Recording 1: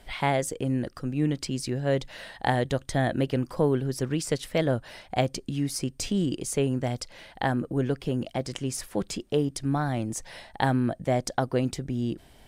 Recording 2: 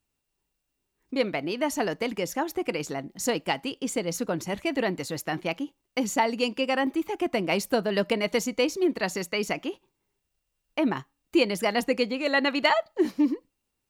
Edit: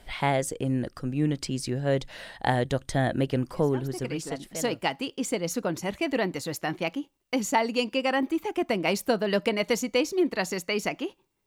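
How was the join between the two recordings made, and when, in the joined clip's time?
recording 1
4.19 s: go over to recording 2 from 2.83 s, crossfade 1.48 s linear

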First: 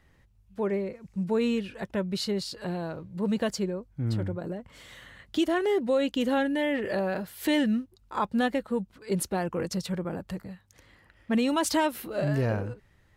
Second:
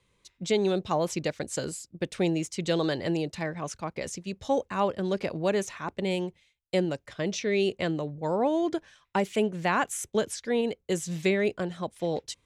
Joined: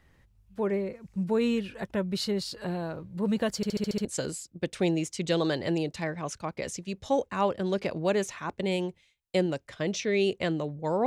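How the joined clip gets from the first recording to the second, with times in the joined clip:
first
3.56 s: stutter in place 0.07 s, 7 plays
4.05 s: go over to second from 1.44 s

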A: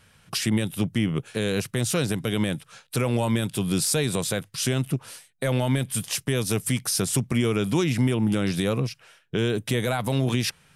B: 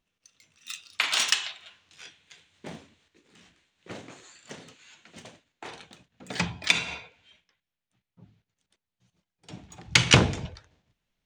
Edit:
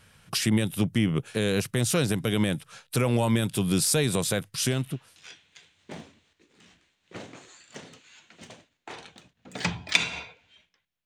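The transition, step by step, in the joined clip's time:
A
4.90 s: go over to B from 1.65 s, crossfade 0.60 s linear

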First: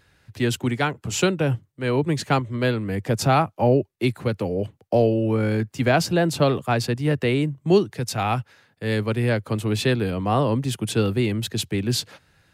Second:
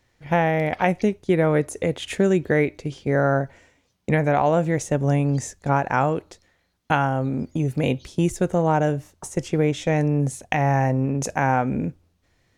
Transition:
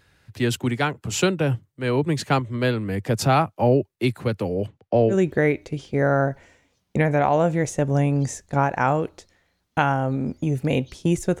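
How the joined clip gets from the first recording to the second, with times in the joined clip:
first
4.67–5.16 s: low-pass 6.9 kHz -> 1.9 kHz
5.12 s: go over to second from 2.25 s, crossfade 0.08 s

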